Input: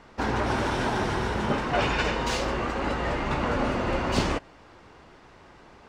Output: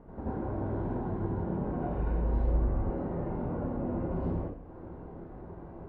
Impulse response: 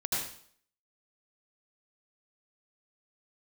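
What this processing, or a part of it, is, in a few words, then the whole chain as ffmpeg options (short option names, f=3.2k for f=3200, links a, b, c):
television next door: -filter_complex "[0:a]acompressor=threshold=-40dB:ratio=4,lowpass=520[a];[1:a]atrim=start_sample=2205[b];[a][b]afir=irnorm=-1:irlink=0,asettb=1/sr,asplit=3[c][d][e];[c]atrim=end=1.894[f];[d]atrim=start=1.89:end=2.9,asetpts=PTS-STARTPTS,afade=t=in:d=0.004:c=qsin,afade=t=out:st=1.006:d=0.004:c=qsin,asubboost=boost=11.5:cutoff=120[g];[e]atrim=start=2.896[h];[f][g]acrossfade=d=0.004:c1=hsin:c2=qsin[i];[i][h]acrossfade=d=0.004:c1=qsin:c2=hsin,volume=3dB"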